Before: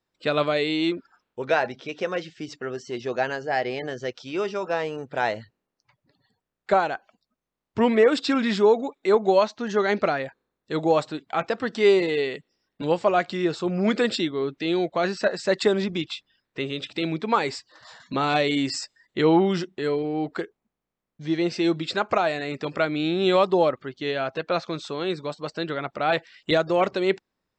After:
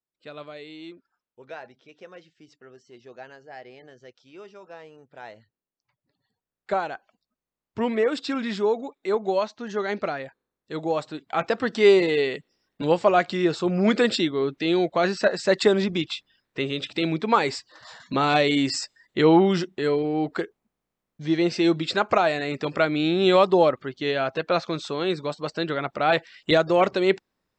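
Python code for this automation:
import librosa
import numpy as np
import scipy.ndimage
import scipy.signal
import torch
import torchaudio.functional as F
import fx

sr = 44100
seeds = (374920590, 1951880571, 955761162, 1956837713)

y = fx.gain(x, sr, db=fx.line((5.22, -17.0), (6.75, -5.0), (11.0, -5.0), (11.49, 2.0)))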